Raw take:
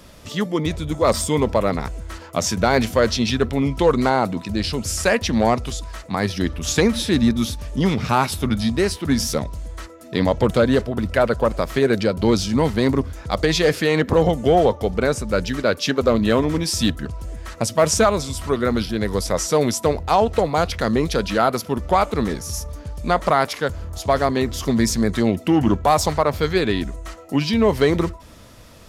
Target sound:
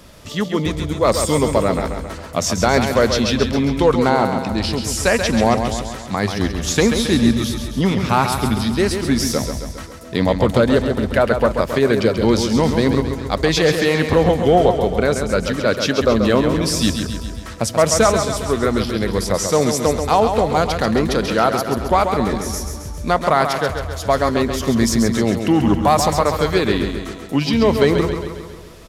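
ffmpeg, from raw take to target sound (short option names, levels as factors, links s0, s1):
-filter_complex "[0:a]asplit=2[s0][s1];[s1]aecho=0:1:135|270|405|540|675|810|945:0.447|0.255|0.145|0.0827|0.0472|0.0269|0.0153[s2];[s0][s2]amix=inputs=2:normalize=0,volume=1.19"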